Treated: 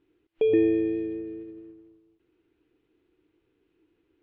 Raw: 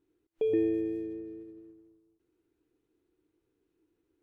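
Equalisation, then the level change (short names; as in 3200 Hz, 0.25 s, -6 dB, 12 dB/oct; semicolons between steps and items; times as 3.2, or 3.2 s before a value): synth low-pass 2900 Hz, resonance Q 1.9; +6.0 dB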